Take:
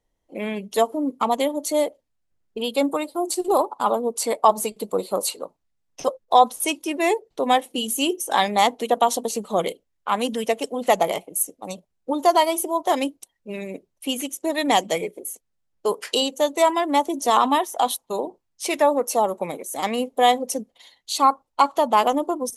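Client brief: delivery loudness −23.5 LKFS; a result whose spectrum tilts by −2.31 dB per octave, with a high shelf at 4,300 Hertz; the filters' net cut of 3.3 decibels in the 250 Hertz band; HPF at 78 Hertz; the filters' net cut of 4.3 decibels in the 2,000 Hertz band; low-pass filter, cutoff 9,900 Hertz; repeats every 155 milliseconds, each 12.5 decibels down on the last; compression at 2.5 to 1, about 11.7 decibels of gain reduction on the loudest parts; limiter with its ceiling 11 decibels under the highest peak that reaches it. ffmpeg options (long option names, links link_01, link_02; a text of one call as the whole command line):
ffmpeg -i in.wav -af "highpass=78,lowpass=9900,equalizer=frequency=250:width_type=o:gain=-4,equalizer=frequency=2000:width_type=o:gain=-6,highshelf=frequency=4300:gain=4,acompressor=threshold=-29dB:ratio=2.5,alimiter=limit=-22dB:level=0:latency=1,aecho=1:1:155|310|465:0.237|0.0569|0.0137,volume=10dB" out.wav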